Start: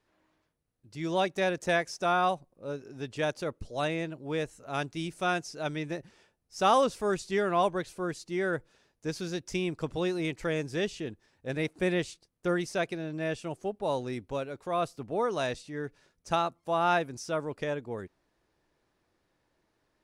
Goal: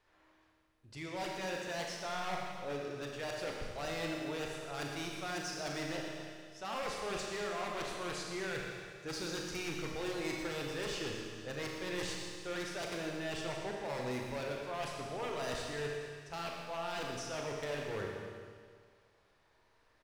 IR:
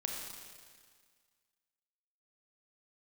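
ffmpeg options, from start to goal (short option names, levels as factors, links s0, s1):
-filter_complex "[0:a]lowpass=f=3900:p=1,equalizer=f=210:t=o:w=2.1:g=-11.5,areverse,acompressor=threshold=0.01:ratio=12,areverse,aeval=exprs='0.01*(abs(mod(val(0)/0.01+3,4)-2)-1)':c=same,aecho=1:1:117|234|351|468|585|702|819:0.282|0.166|0.0981|0.0579|0.0342|0.0201|0.0119[s0];[1:a]atrim=start_sample=2205[s1];[s0][s1]afir=irnorm=-1:irlink=0,volume=2"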